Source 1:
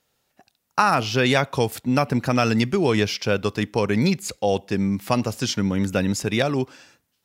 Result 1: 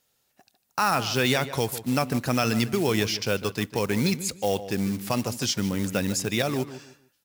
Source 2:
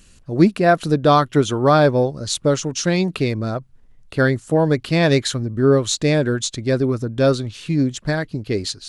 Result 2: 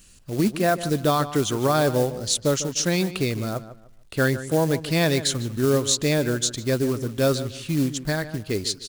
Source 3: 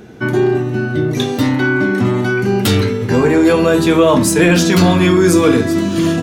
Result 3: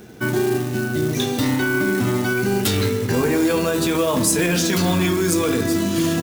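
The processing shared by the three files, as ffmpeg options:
-filter_complex "[0:a]acrossover=split=5800[a][b];[a]acrusher=bits=5:mode=log:mix=0:aa=0.000001[c];[c][b]amix=inputs=2:normalize=0,alimiter=limit=-8dB:level=0:latency=1:release=20,highshelf=f=4.3k:g=8,asplit=2[d][e];[e]adelay=150,lowpass=f=2.8k:p=1,volume=-13dB,asplit=2[f][g];[g]adelay=150,lowpass=f=2.8k:p=1,volume=0.27,asplit=2[h][i];[i]adelay=150,lowpass=f=2.8k:p=1,volume=0.27[j];[d][f][h][j]amix=inputs=4:normalize=0,volume=-4.5dB"

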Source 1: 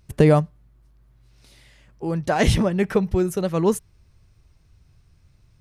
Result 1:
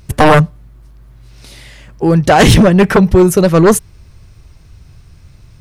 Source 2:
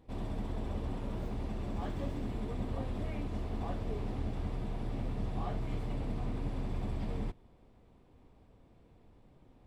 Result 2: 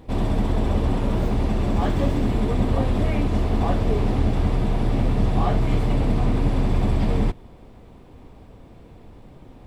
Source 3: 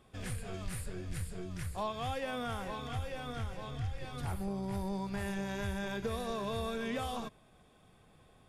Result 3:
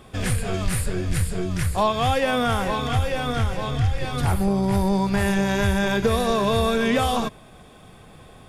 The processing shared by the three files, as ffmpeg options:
-af "aeval=exprs='0.75*sin(PI/2*3.98*val(0)/0.75)':c=same"

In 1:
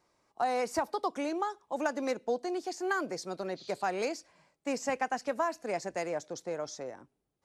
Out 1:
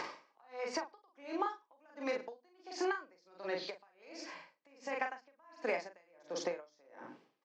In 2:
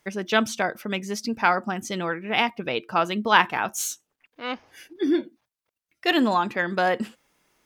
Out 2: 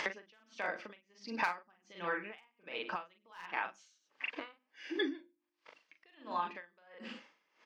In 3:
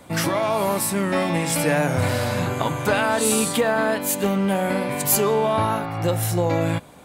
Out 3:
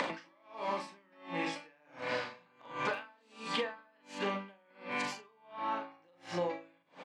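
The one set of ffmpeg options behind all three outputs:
-filter_complex "[0:a]highpass=f=200:w=0.5412,highpass=f=200:w=1.3066,equalizer=f=220:t=q:w=4:g=-5,equalizer=f=400:t=q:w=4:g=-6,equalizer=f=710:t=q:w=4:g=-6,equalizer=f=3.8k:t=q:w=4:g=-6,lowpass=f=4.6k:w=0.5412,lowpass=f=4.6k:w=1.3066,bandreject=f=1.4k:w=12,aecho=1:1:98:0.0841,asoftclip=type=hard:threshold=-11.5dB,lowshelf=f=370:g=-6.5,acompressor=mode=upward:threshold=-27dB:ratio=2.5,bandreject=f=50:t=h:w=6,bandreject=f=100:t=h:w=6,bandreject=f=150:t=h:w=6,bandreject=f=200:t=h:w=6,bandreject=f=250:t=h:w=6,bandreject=f=300:t=h:w=6,bandreject=f=350:t=h:w=6,asplit=2[a][b];[b]adelay=40,volume=-4dB[c];[a][c]amix=inputs=2:normalize=0,acompressor=threshold=-37dB:ratio=8,aeval=exprs='val(0)*pow(10,-34*(0.5-0.5*cos(2*PI*1.4*n/s))/20)':c=same,volume=6.5dB"

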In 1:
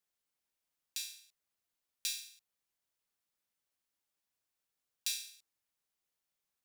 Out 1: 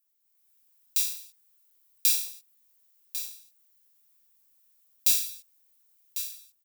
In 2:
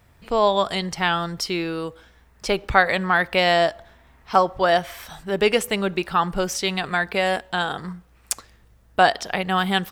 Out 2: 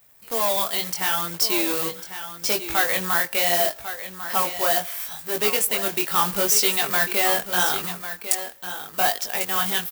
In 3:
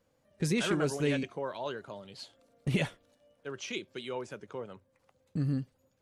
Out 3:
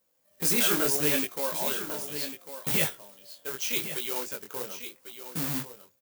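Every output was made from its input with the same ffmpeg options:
-filter_complex "[0:a]acrusher=bits=2:mode=log:mix=0:aa=0.000001,dynaudnorm=f=100:g=7:m=9dB,asoftclip=type=tanh:threshold=-9.5dB,aemphasis=mode=production:type=bsi,flanger=delay=18:depth=6.5:speed=0.75,asplit=2[a][b];[b]aecho=0:1:1098:0.282[c];[a][c]amix=inputs=2:normalize=0,volume=-3dB"

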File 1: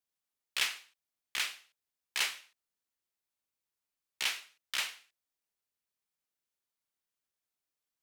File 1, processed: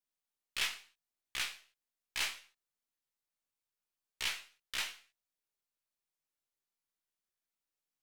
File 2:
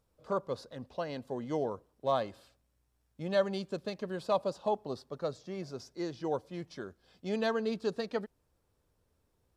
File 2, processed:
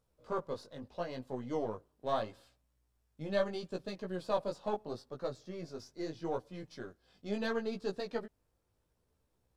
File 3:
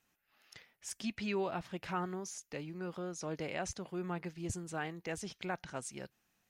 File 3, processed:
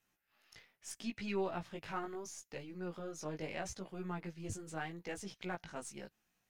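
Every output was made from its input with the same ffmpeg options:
-af "aeval=exprs='if(lt(val(0),0),0.708*val(0),val(0))':c=same,flanger=delay=15.5:depth=4.3:speed=0.76,volume=1dB"

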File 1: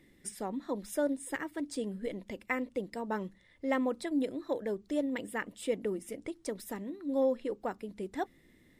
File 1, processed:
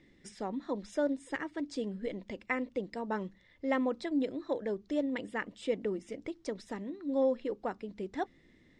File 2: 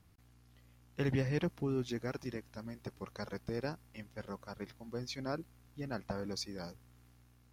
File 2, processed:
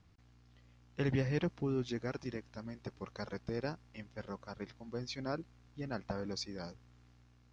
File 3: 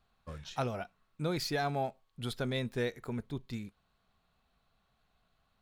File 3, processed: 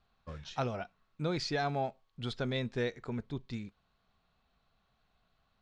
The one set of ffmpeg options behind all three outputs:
-af "lowpass=f=6.5k:w=0.5412,lowpass=f=6.5k:w=1.3066"

